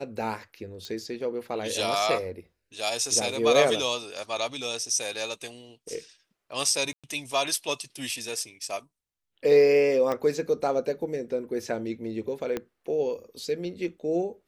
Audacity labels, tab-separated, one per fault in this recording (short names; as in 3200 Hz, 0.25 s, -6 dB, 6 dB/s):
0.850000	0.850000	pop -24 dBFS
6.930000	7.040000	gap 0.106 s
10.120000	10.120000	pop -17 dBFS
12.570000	12.570000	pop -16 dBFS